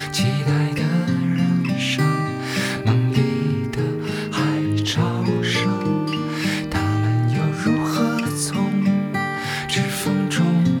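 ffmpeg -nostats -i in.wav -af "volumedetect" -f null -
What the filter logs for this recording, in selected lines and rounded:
mean_volume: -20.2 dB
max_volume: -6.4 dB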